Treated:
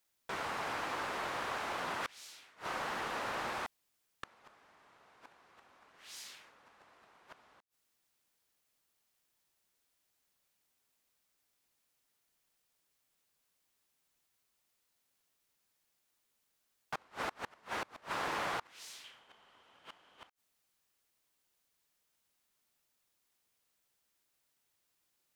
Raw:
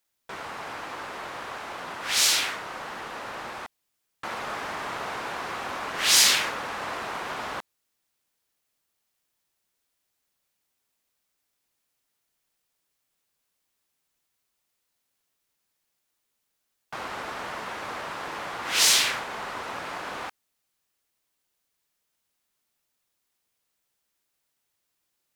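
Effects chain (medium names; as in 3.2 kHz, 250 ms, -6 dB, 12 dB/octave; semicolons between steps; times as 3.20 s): 19.04–20.27 s: peaking EQ 3.1 kHz +13.5 dB 0.24 oct; inverted gate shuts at -24 dBFS, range -30 dB; trim -1.5 dB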